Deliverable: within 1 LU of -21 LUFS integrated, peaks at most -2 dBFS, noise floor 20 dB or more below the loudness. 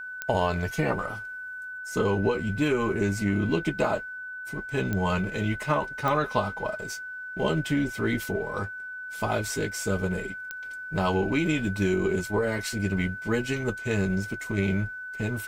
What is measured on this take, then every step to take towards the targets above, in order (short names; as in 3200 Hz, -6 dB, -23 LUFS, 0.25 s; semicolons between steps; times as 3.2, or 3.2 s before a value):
clicks 4; steady tone 1500 Hz; tone level -35 dBFS; loudness -28.0 LUFS; peak -9.5 dBFS; loudness target -21.0 LUFS
-> de-click; notch 1500 Hz, Q 30; gain +7 dB